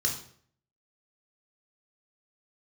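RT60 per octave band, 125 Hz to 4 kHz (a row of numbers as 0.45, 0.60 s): 0.70, 0.60, 0.60, 0.55, 0.50, 0.45 s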